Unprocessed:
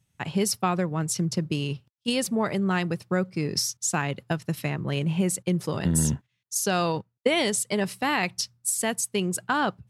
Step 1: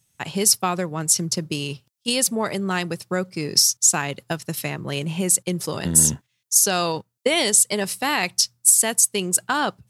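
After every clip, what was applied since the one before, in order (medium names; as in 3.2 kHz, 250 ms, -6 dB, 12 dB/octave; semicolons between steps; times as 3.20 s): tone controls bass -5 dB, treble +10 dB; trim +2.5 dB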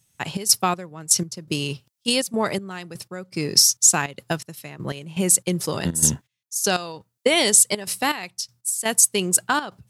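trance gate "xxx.xx...x..xxx" 122 bpm -12 dB; trim +1.5 dB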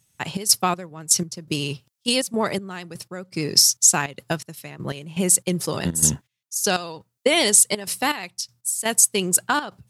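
vibrato 15 Hz 38 cents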